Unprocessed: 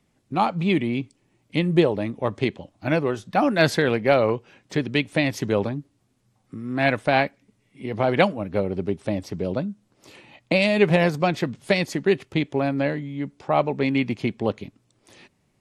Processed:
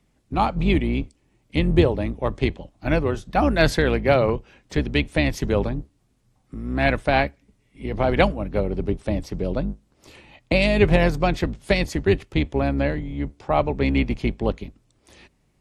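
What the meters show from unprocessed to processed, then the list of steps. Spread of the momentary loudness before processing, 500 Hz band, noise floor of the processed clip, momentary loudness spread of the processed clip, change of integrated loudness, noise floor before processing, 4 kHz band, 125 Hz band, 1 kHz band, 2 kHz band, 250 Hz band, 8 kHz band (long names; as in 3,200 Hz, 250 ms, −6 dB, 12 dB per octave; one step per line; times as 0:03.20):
11 LU, 0.0 dB, −65 dBFS, 11 LU, +0.5 dB, −67 dBFS, 0.0 dB, +3.0 dB, 0.0 dB, 0.0 dB, +0.5 dB, 0.0 dB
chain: sub-octave generator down 2 octaves, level 0 dB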